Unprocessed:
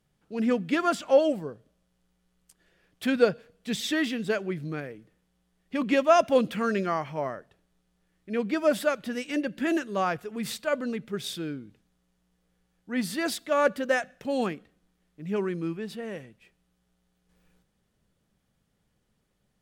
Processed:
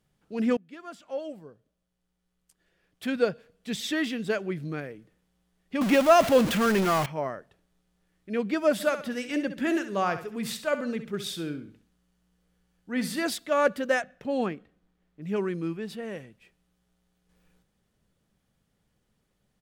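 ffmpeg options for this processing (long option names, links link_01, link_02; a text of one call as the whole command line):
ffmpeg -i in.wav -filter_complex "[0:a]asettb=1/sr,asplit=3[link_01][link_02][link_03];[link_01]atrim=end=5.814[link_04];[link_02]atrim=start=5.81:end=7.06,asetpts=PTS-STARTPTS,afade=type=in:duration=0.004:curve=qsin,afade=type=out:start_time=1.246:duration=0.004:curve=qsin,aeval=exprs='val(0)+0.5*0.0596*sgn(val(0))':channel_layout=same[link_05];[link_03]atrim=start=7.056[link_06];[link_04][link_05]acrossfade=duration=0.004:curve1=hsin:curve2=qsin[link_07];[link_07][link_06]acrossfade=duration=0.004:curve1=qsin:curve2=hsin,asplit=3[link_08][link_09][link_10];[link_08]afade=type=out:start_time=8.79:duration=0.02[link_11];[link_09]aecho=1:1:66|132|198|264:0.282|0.093|0.0307|0.0101,afade=type=in:start_time=8.79:duration=0.02,afade=type=out:start_time=13.24:duration=0.02[link_12];[link_10]afade=type=in:start_time=13.24:duration=0.02[link_13];[link_11][link_12][link_13]amix=inputs=3:normalize=0,asettb=1/sr,asplit=3[link_14][link_15][link_16];[link_14]atrim=end=14.024[link_17];[link_15]atrim=start=14.02:end=15.22,asetpts=PTS-STARTPTS,afade=type=in:duration=0.004:curve=qsin,afade=type=out:start_time=1.196:duration=0.004:curve=qsin,highshelf=frequency=4200:gain=-11.5[link_18];[link_16]atrim=start=15.216[link_19];[link_17][link_18]acrossfade=duration=0.004:curve1=hsin:curve2=qsin[link_20];[link_20][link_19]acrossfade=duration=0.004:curve1=qsin:curve2=hsin,asplit=2[link_21][link_22];[link_21]atrim=end=0.57,asetpts=PTS-STARTPTS,afade=type=out:start_time=0.566:duration=0.004:curve=hsin:silence=0.0668344[link_23];[link_22]atrim=start=0.57,asetpts=PTS-STARTPTS,afade=type=in:duration=4:silence=0.0668344[link_24];[link_23][link_24]concat=n=2:v=0:a=1" out.wav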